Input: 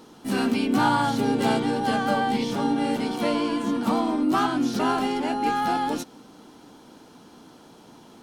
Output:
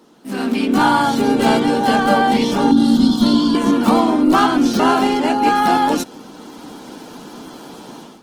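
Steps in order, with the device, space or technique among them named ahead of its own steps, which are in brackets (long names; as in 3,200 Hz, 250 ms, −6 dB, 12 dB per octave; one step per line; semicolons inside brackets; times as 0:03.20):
0:02.71–0:03.55: drawn EQ curve 110 Hz 0 dB, 260 Hz +8 dB, 380 Hz −18 dB, 1,300 Hz −4 dB, 2,400 Hz −21 dB, 3,500 Hz +6 dB, 8,700 Hz −3 dB
video call (high-pass filter 150 Hz 24 dB per octave; automatic gain control gain up to 15 dB; level −1 dB; Opus 16 kbit/s 48,000 Hz)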